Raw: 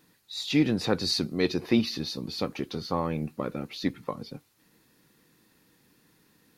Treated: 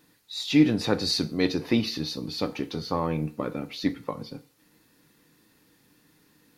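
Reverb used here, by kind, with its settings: FDN reverb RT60 0.42 s, low-frequency decay 0.75×, high-frequency decay 0.9×, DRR 9 dB; gain +1 dB

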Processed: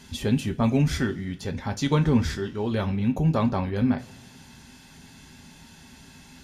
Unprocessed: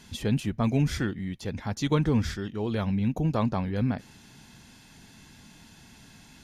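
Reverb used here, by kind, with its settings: two-slope reverb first 0.21 s, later 1.7 s, from -22 dB, DRR 5 dB; gain +2 dB

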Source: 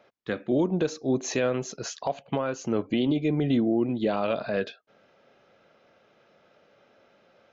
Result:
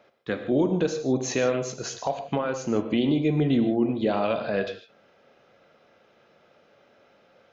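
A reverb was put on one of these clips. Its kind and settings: non-linear reverb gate 0.18 s flat, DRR 7 dB; gain +1 dB

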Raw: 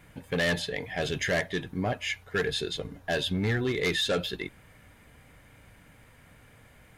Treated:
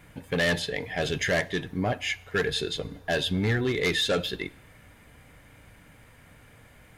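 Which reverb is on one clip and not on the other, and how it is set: FDN reverb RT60 0.85 s, low-frequency decay 0.9×, high-frequency decay 0.95×, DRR 19.5 dB; gain +2 dB

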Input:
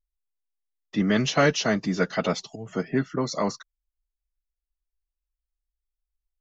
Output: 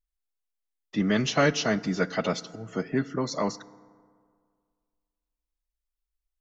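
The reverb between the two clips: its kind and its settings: FDN reverb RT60 2 s, low-frequency decay 1×, high-frequency decay 0.45×, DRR 17.5 dB; gain -2 dB

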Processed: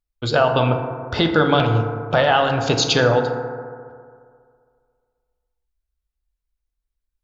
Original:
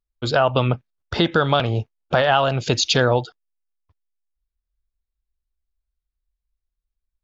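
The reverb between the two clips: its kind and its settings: FDN reverb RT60 2.1 s, low-frequency decay 0.9×, high-frequency decay 0.3×, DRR 3.5 dB

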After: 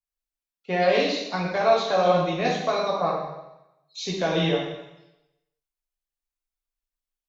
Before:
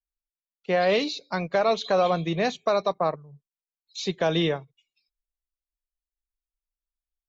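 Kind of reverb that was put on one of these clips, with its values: plate-style reverb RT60 0.92 s, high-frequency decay 1×, DRR -4.5 dB; gain -4 dB

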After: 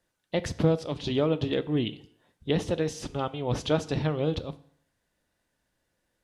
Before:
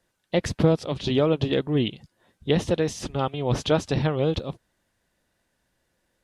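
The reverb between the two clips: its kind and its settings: FDN reverb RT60 0.65 s, low-frequency decay 0.9×, high-frequency decay 0.9×, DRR 13 dB; gain -4.5 dB

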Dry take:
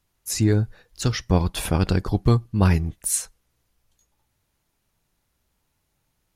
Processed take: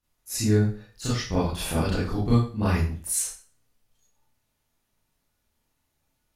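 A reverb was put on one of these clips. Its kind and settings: Schroeder reverb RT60 0.39 s, combs from 26 ms, DRR -9.5 dB; gain -12 dB

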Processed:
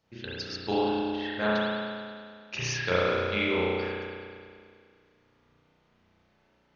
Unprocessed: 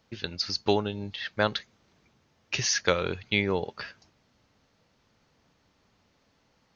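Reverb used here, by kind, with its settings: spring tank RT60 2.1 s, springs 33 ms, chirp 75 ms, DRR -9.5 dB; gain -9 dB

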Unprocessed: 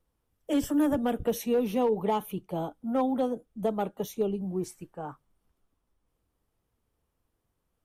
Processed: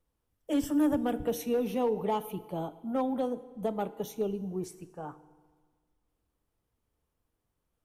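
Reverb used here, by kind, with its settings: FDN reverb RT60 1.5 s, low-frequency decay 1.05×, high-frequency decay 0.85×, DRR 14.5 dB; gain -3 dB

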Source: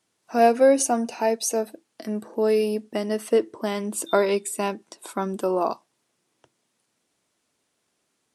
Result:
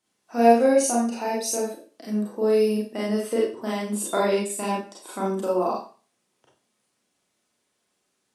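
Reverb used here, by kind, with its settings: Schroeder reverb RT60 0.37 s, combs from 30 ms, DRR -5 dB; gain -6.5 dB

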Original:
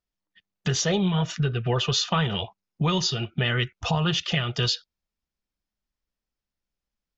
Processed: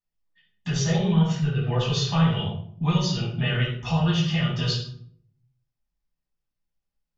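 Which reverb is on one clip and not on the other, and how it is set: shoebox room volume 880 m³, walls furnished, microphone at 9.3 m; gain -13 dB

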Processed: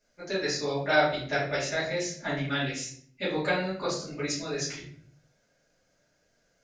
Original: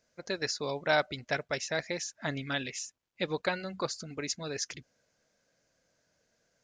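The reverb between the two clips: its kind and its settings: shoebox room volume 79 m³, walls mixed, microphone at 2.5 m; gain -7 dB

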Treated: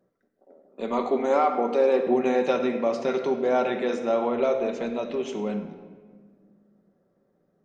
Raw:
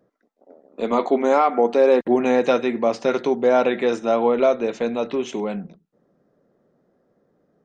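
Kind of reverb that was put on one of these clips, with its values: shoebox room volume 2000 m³, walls mixed, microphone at 1.1 m; gain -6.5 dB

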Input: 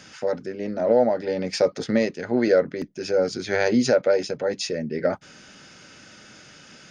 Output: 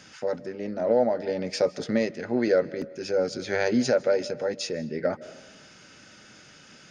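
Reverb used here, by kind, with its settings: digital reverb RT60 1.2 s, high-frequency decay 0.5×, pre-delay 0.115 s, DRR 18.5 dB; gain -3.5 dB

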